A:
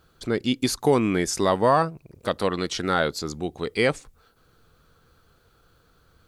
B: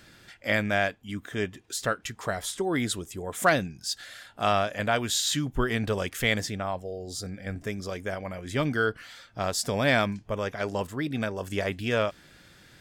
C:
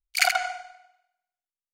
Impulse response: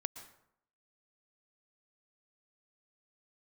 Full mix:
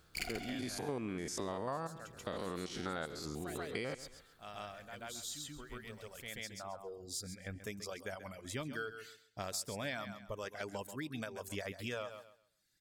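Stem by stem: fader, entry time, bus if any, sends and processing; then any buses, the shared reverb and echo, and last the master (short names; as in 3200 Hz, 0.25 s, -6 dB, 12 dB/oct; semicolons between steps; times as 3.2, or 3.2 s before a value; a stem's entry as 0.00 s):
-5.5 dB, 0.00 s, no send, echo send -19.5 dB, stepped spectrum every 0.1 s
-9.0 dB, 0.00 s, no send, echo send -13.5 dB, gate -45 dBFS, range -12 dB; reverb removal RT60 1.2 s; high shelf 4300 Hz +10 dB; auto duck -17 dB, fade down 1.00 s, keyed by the first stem
-10.5 dB, 0.00 s, no send, echo send -8 dB, minimum comb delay 0.4 ms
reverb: off
echo: feedback echo 0.134 s, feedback 22%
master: compressor 4:1, threshold -38 dBFS, peak gain reduction 13.5 dB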